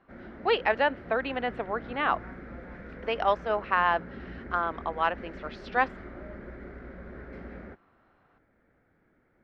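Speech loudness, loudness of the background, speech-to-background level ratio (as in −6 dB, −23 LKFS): −29.0 LKFS, −44.0 LKFS, 15.0 dB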